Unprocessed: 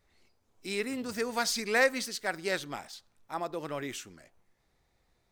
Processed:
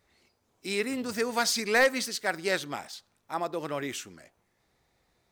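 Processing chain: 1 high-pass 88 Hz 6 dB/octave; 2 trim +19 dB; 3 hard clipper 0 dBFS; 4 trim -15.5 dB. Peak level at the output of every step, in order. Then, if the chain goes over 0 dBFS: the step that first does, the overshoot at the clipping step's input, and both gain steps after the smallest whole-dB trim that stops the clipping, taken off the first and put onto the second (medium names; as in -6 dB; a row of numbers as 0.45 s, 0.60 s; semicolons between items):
-12.5 dBFS, +6.5 dBFS, 0.0 dBFS, -15.5 dBFS; step 2, 6.5 dB; step 2 +12 dB, step 4 -8.5 dB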